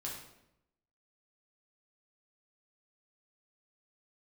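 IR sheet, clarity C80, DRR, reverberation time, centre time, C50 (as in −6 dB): 6.5 dB, −4.0 dB, 0.85 s, 45 ms, 3.0 dB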